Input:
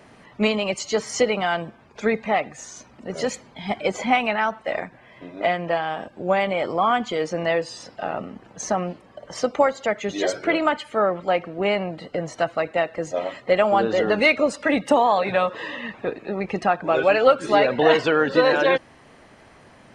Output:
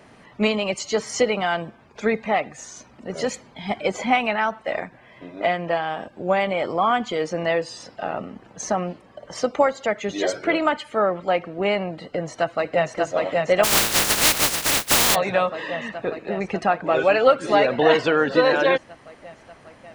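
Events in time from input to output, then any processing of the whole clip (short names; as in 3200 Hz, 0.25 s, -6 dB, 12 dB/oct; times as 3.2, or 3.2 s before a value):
12–12.95 echo throw 0.59 s, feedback 80%, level -2 dB
13.63–15.14 spectral contrast lowered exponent 0.11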